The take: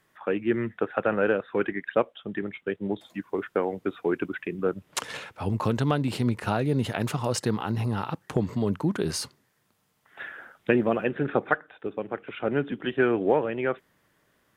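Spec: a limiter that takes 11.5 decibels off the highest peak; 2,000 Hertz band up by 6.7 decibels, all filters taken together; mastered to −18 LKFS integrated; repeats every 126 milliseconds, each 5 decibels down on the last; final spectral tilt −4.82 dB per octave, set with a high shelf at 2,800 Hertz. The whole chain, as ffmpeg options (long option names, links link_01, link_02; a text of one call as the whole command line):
ffmpeg -i in.wav -af "equalizer=frequency=2000:width_type=o:gain=7,highshelf=frequency=2800:gain=6,alimiter=limit=-14.5dB:level=0:latency=1,aecho=1:1:126|252|378|504|630|756|882:0.562|0.315|0.176|0.0988|0.0553|0.031|0.0173,volume=9dB" out.wav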